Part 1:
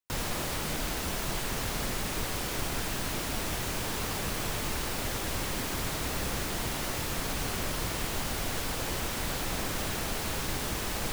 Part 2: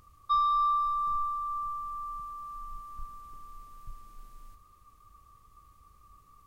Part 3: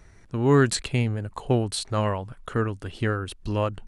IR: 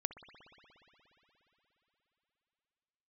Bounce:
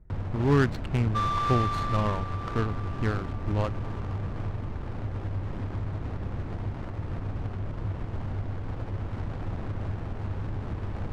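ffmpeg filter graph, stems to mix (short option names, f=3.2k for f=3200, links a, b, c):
-filter_complex "[0:a]equalizer=f=99:t=o:w=0.33:g=14.5,alimiter=limit=-22dB:level=0:latency=1:release=147,volume=0dB,asplit=2[a][b];[b]volume=-8.5dB[c];[1:a]adelay=850,volume=-2.5dB,asplit=2[d][e];[e]volume=-11dB[f];[2:a]volume=-1dB[g];[3:a]atrim=start_sample=2205[h];[c][f]amix=inputs=2:normalize=0[i];[i][h]afir=irnorm=-1:irlink=0[j];[a][d][g][j]amix=inputs=4:normalize=0,equalizer=f=520:t=o:w=1.9:g=-4.5,adynamicsmooth=sensitivity=1.5:basefreq=560"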